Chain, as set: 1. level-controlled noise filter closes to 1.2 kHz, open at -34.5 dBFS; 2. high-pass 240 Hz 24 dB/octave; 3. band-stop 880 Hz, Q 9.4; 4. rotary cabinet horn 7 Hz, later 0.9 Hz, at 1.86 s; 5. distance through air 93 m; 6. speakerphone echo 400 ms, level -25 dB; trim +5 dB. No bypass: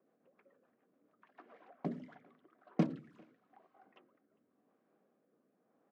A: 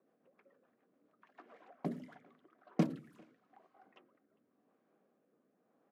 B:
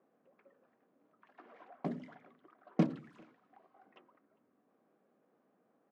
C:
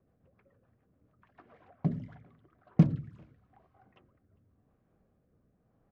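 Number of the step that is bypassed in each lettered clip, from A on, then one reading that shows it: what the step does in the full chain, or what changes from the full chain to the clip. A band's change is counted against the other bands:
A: 5, 4 kHz band +2.0 dB; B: 4, momentary loudness spread change +6 LU; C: 2, 125 Hz band +14.0 dB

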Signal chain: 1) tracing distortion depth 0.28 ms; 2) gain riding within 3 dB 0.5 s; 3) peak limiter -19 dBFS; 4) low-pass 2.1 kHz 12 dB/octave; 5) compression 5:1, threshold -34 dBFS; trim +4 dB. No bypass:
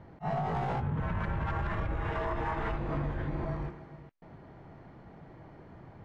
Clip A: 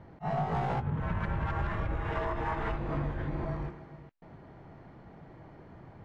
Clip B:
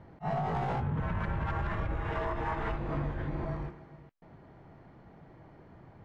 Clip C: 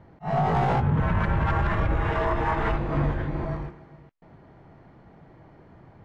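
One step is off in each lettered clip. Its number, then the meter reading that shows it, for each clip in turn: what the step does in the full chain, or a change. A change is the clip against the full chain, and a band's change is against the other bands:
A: 3, crest factor change +2.0 dB; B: 2, momentary loudness spread change -13 LU; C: 5, crest factor change -1.5 dB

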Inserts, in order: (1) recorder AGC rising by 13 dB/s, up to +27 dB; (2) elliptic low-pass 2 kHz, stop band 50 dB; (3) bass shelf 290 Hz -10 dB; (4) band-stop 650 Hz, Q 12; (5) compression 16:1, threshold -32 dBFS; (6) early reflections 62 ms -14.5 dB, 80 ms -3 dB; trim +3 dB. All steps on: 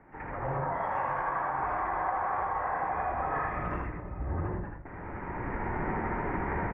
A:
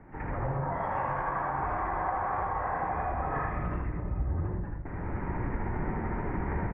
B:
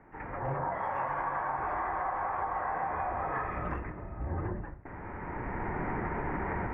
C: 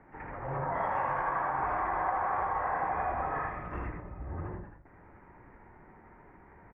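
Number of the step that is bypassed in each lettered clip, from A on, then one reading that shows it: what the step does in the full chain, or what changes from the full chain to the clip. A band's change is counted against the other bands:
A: 3, 125 Hz band +5.0 dB; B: 6, loudness change -2.0 LU; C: 1, crest factor change +2.0 dB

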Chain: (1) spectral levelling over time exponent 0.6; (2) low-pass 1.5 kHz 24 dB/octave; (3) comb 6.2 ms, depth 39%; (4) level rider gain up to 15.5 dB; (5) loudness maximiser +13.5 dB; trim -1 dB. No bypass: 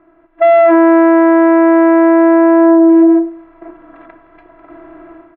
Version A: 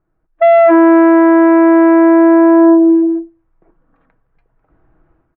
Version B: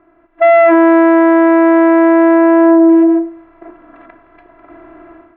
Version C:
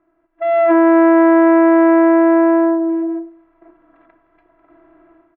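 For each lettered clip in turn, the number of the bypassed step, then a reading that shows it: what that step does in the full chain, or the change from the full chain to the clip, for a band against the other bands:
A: 1, momentary loudness spread change +2 LU; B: 3, 2 kHz band +2.5 dB; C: 5, crest factor change +2.5 dB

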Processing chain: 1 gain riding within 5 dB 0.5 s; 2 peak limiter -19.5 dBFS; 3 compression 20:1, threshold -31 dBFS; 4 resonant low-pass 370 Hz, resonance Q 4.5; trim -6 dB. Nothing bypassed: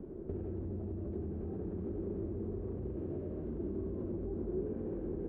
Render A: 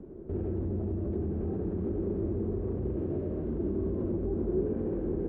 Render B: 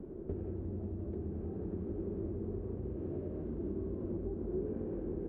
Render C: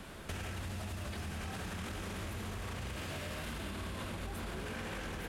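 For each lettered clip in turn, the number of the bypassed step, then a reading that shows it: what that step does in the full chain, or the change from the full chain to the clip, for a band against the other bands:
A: 3, mean gain reduction 7.0 dB; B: 2, mean gain reduction 6.0 dB; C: 4, 1 kHz band +20.0 dB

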